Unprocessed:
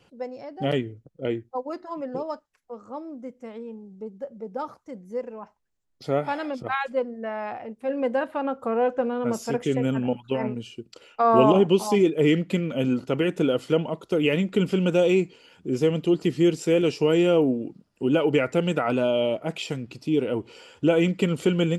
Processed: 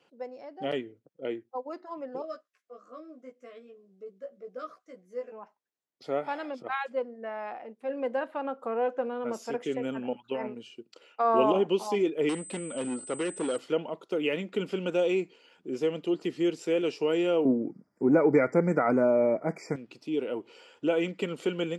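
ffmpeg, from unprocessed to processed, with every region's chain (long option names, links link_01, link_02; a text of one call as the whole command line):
ffmpeg -i in.wav -filter_complex "[0:a]asettb=1/sr,asplit=3[link_01][link_02][link_03];[link_01]atrim=end=2.224[link_04];[link_02]atrim=start=2.22:end=5.32,asetpts=PTS-STARTPTS,afade=type=in:duration=0.004:curve=qsin,afade=type=out:start_time=3.096:duration=0.004:curve=qsin,asuperstop=centerf=870:order=20:qfactor=3.5,lowshelf=frequency=470:gain=-8.5,asplit=2[link_05][link_06];[link_06]adelay=16,volume=-2dB[link_07];[link_05][link_07]amix=inputs=2:normalize=0,atrim=end_sample=136710[link_08];[link_03]atrim=start=5.316[link_09];[link_04][link_08]acrossfade=duration=0.004:curve1=hsin:curve2=qsin[link_10];[link_10][link_09]acrossfade=duration=0.004:curve1=qsin:curve2=hsin,asettb=1/sr,asplit=3[link_11][link_12][link_13];[link_11]atrim=end=12.294[link_14];[link_12]atrim=start=12.29:end=13.58,asetpts=PTS-STARTPTS,afade=type=in:duration=0.004:curve=qsin,afade=type=out:start_time=1.286:duration=0.004:curve=qsin,asoftclip=type=hard:threshold=-19dB,bandreject=frequency=2400:width=20,aeval=exprs='val(0)+0.0251*sin(2*PI*8100*n/s)':channel_layout=same[link_15];[link_13]atrim=start=13.576[link_16];[link_14][link_15]acrossfade=duration=0.004:curve1=hsin:curve2=qsin[link_17];[link_17][link_16]acrossfade=duration=0.004:curve1=qsin:curve2=hsin,asettb=1/sr,asplit=3[link_18][link_19][link_20];[link_18]atrim=end=17.454[link_21];[link_19]atrim=start=17.45:end=19.76,asetpts=PTS-STARTPTS,afade=type=in:duration=0.004:curve=qsin,afade=type=out:start_time=2.306:duration=0.004:curve=qsin,bass=frequency=250:gain=10,treble=frequency=4000:gain=-5,acontrast=20,asuperstop=centerf=3300:order=20:qfactor=1.4[link_22];[link_20]atrim=start=19.756[link_23];[link_21][link_22]acrossfade=duration=0.004:curve1=hsin:curve2=qsin[link_24];[link_24][link_23]acrossfade=duration=0.004:curve1=qsin:curve2=hsin,highpass=290,highshelf=frequency=8300:gain=-11,volume=-5dB" out.wav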